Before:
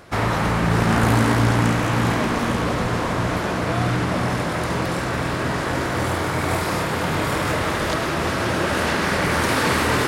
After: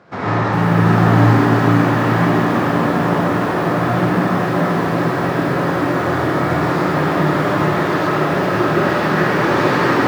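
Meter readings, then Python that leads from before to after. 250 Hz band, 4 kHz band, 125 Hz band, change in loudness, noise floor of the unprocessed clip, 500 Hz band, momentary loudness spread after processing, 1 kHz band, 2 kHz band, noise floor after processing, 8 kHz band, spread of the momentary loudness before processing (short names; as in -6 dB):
+7.0 dB, -2.0 dB, +5.0 dB, +5.0 dB, -24 dBFS, +6.5 dB, 5 LU, +5.5 dB, +3.0 dB, -19 dBFS, -7.5 dB, 5 LU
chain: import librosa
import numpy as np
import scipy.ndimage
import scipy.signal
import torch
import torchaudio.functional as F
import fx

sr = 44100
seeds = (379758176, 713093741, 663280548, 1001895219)

p1 = scipy.signal.sosfilt(scipy.signal.butter(4, 110.0, 'highpass', fs=sr, output='sos'), x)
p2 = fx.peak_eq(p1, sr, hz=2900.0, db=-5.0, octaves=1.1)
p3 = fx.quant_companded(p2, sr, bits=6)
p4 = fx.air_absorb(p3, sr, metres=180.0)
p5 = p4 + fx.echo_tape(p4, sr, ms=442, feedback_pct=83, wet_db=-5.0, lp_hz=3500.0, drive_db=12.0, wow_cents=13, dry=0)
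p6 = fx.rev_gated(p5, sr, seeds[0], gate_ms=170, shape='rising', drr_db=-6.0)
p7 = fx.echo_crushed(p6, sr, ms=404, feedback_pct=55, bits=5, wet_db=-11.0)
y = p7 * librosa.db_to_amplitude(-2.0)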